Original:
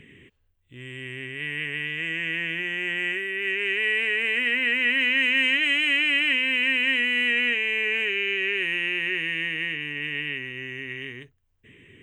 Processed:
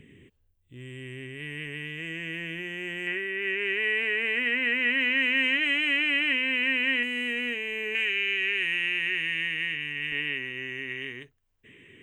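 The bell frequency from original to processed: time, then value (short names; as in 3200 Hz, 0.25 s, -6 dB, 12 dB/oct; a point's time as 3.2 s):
bell -8 dB 2.7 oct
1900 Hz
from 3.07 s 8300 Hz
from 7.03 s 2100 Hz
from 7.95 s 400 Hz
from 10.12 s 60 Hz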